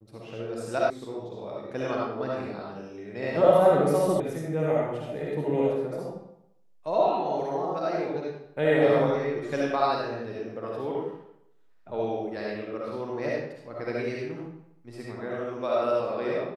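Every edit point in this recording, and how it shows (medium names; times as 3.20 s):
0.90 s: sound stops dead
4.20 s: sound stops dead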